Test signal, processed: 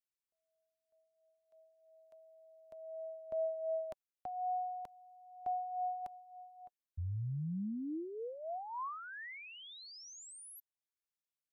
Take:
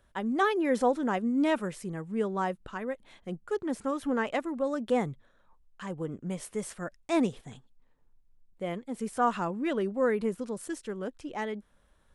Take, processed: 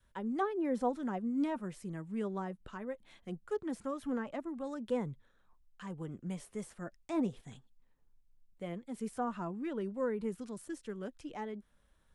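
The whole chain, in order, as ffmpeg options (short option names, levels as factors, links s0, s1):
-filter_complex "[0:a]acrossover=split=310|1300[s0][s1][s2];[s1]flanger=delay=2:depth=8.2:regen=18:speed=0.2:shape=sinusoidal[s3];[s2]acompressor=threshold=0.00398:ratio=10[s4];[s0][s3][s4]amix=inputs=3:normalize=0,adynamicequalizer=threshold=0.00631:dfrequency=480:dqfactor=1.3:tfrequency=480:tqfactor=1.3:attack=5:release=100:ratio=0.375:range=2:mode=cutabove:tftype=bell,volume=0.631"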